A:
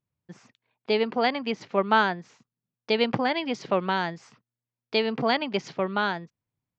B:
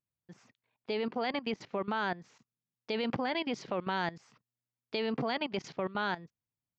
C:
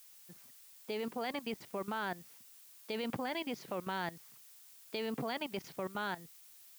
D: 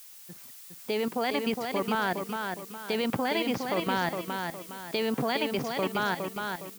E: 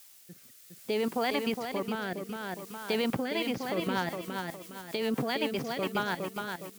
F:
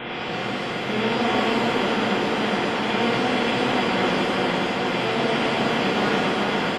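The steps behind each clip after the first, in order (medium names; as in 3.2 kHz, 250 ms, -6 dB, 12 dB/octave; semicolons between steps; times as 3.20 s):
peak limiter -16 dBFS, peak gain reduction 7.5 dB; level held to a coarse grid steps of 16 dB
added noise blue -53 dBFS; trim -5 dB
feedback delay 412 ms, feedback 37%, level -5 dB; trim +9 dB
rotary cabinet horn 0.6 Hz, later 7.5 Hz, at 3.00 s
spectral levelling over time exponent 0.2; resampled via 8 kHz; pitch-shifted reverb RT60 1.2 s, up +7 st, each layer -8 dB, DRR -5 dB; trim -5.5 dB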